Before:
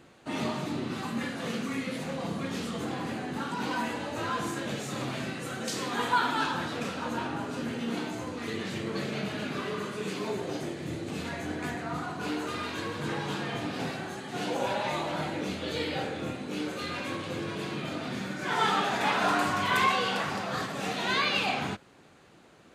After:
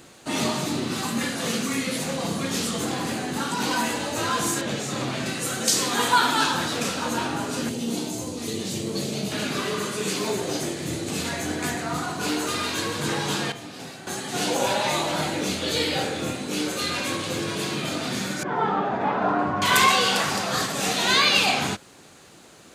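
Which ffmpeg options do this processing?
ffmpeg -i in.wav -filter_complex "[0:a]asettb=1/sr,asplit=3[link_01][link_02][link_03];[link_01]atrim=end=4.614[link_04];[link_02]atrim=start=4.61:end=5.26,asetpts=PTS-STARTPTS,afade=type=in:duration=0.004:curve=qsin,afade=type=out:start_time=0.646:duration=0.004:curve=qsin,aemphasis=mode=reproduction:type=50kf[link_05];[link_03]atrim=start=5.256[link_06];[link_04][link_05]acrossfade=duration=0.004:curve1=hsin:curve2=qsin[link_07];[link_07][link_06]acrossfade=duration=0.004:curve1=qsin:curve2=hsin,asettb=1/sr,asplit=3[link_08][link_09][link_10];[link_08]atrim=end=7.694[link_11];[link_09]atrim=start=7.69:end=9.32,asetpts=PTS-STARTPTS,afade=type=in:duration=0.004:curve=qsin,afade=type=out:start_time=1.626:duration=0.004:curve=qsin,equalizer=frequency=1600:width_type=o:width=1.6:gain=-13[link_12];[link_10]atrim=start=9.316[link_13];[link_11][link_12]acrossfade=duration=0.004:curve1=hsin:curve2=qsin[link_14];[link_14][link_13]acrossfade=duration=0.004:curve1=qsin:curve2=hsin,asettb=1/sr,asplit=3[link_15][link_16][link_17];[link_15]atrim=end=18.434[link_18];[link_16]atrim=start=18.43:end=19.62,asetpts=PTS-STARTPTS,afade=type=in:duration=0.004:curve=qsin,afade=type=out:start_time=1.186:duration=0.004:curve=qsin,lowpass=1000[link_19];[link_17]atrim=start=19.616[link_20];[link_18][link_19]acrossfade=duration=0.004:curve1=hsin:curve2=qsin[link_21];[link_21][link_20]acrossfade=duration=0.004:curve1=qsin:curve2=hsin,asplit=3[link_22][link_23][link_24];[link_22]atrim=end=13.522[link_25];[link_23]atrim=start=13.518:end=14.072,asetpts=PTS-STARTPTS,volume=-11.5dB[link_26];[link_24]atrim=start=14.068[link_27];[link_25][link_26]acrossfade=duration=0.004:curve1=hsin:curve2=hsin[link_28];[link_28][link_27]acrossfade=duration=0.004:curve1=hsin:curve2=hsin,bass=frequency=250:gain=-1,treble=frequency=4000:gain=12,volume=6dB" out.wav

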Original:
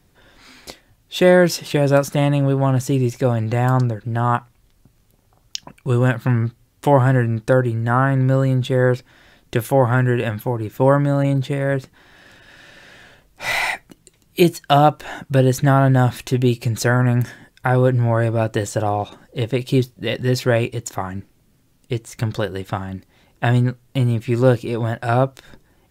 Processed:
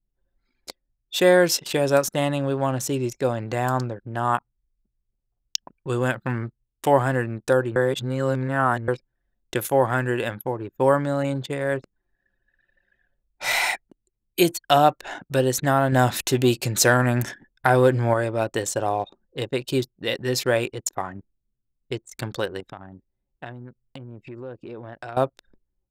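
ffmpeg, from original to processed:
ffmpeg -i in.wav -filter_complex "[0:a]asettb=1/sr,asplit=3[link_01][link_02][link_03];[link_01]atrim=end=15.924[link_04];[link_02]atrim=start=15.92:end=18.14,asetpts=PTS-STARTPTS,afade=type=in:duration=0.004:curve=qsin,afade=type=out:start_time=2.216:duration=0.004:curve=qsin,acontrast=22[link_05];[link_03]atrim=start=18.136[link_06];[link_04][link_05]acrossfade=duration=0.004:curve1=hsin:curve2=qsin[link_07];[link_07][link_06]acrossfade=duration=0.004:curve1=qsin:curve2=hsin,asettb=1/sr,asplit=3[link_08][link_09][link_10];[link_08]atrim=end=22.604[link_11];[link_09]atrim=start=22.6:end=25.17,asetpts=PTS-STARTPTS,afade=type=in:duration=0.004:curve=qsin,afade=type=out:start_time=2.566:duration=0.004:curve=qsin,acompressor=threshold=-28dB:ratio=6:attack=3.2:release=140:knee=1:detection=peak[link_12];[link_10]atrim=start=25.166[link_13];[link_11][link_12]acrossfade=duration=0.004:curve1=hsin:curve2=qsin[link_14];[link_14][link_13]acrossfade=duration=0.004:curve1=qsin:curve2=hsin,asplit=3[link_15][link_16][link_17];[link_15]atrim=end=7.762[link_18];[link_16]atrim=start=7.758:end=8.882,asetpts=PTS-STARTPTS,areverse[link_19];[link_17]atrim=start=8.878[link_20];[link_18][link_19]acrossfade=duration=0.004:curve1=hsin:curve2=hsin[link_21];[link_21][link_20]acrossfade=duration=0.004:curve1=hsin:curve2=hsin,anlmdn=10,bass=frequency=250:gain=-9,treble=frequency=4000:gain=6,volume=-2.5dB" out.wav

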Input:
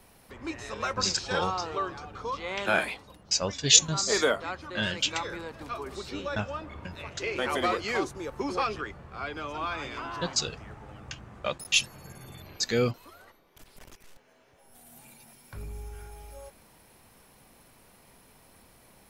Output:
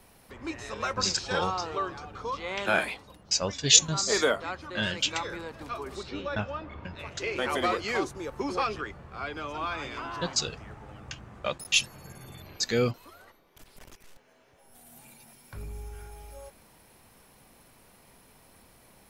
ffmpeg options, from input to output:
ffmpeg -i in.wav -filter_complex "[0:a]asettb=1/sr,asplit=3[link_01][link_02][link_03];[link_01]atrim=end=6.034[link_04];[link_02]atrim=start=6.03:end=6.99,asetpts=PTS-STARTPTS,afade=type=in:duration=0.004:curve=qsin,afade=type=out:start_time=0.956:duration=0.004:curve=qsin,lowpass=4400[link_05];[link_03]atrim=start=6.986[link_06];[link_04][link_05]acrossfade=duration=0.004:curve1=hsin:curve2=qsin[link_07];[link_07][link_06]acrossfade=duration=0.004:curve1=qsin:curve2=hsin" out.wav

